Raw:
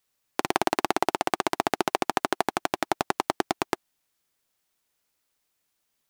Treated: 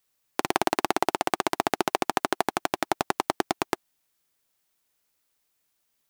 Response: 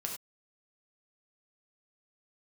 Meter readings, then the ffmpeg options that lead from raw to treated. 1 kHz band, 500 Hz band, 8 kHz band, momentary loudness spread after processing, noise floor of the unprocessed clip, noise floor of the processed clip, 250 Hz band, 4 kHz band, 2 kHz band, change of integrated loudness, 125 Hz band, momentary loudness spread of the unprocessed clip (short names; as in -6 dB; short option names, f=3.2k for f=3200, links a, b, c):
0.0 dB, 0.0 dB, +1.0 dB, 5 LU, -77 dBFS, -75 dBFS, 0.0 dB, +0.5 dB, 0.0 dB, 0.0 dB, 0.0 dB, 5 LU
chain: -af "highshelf=f=11k:g=4"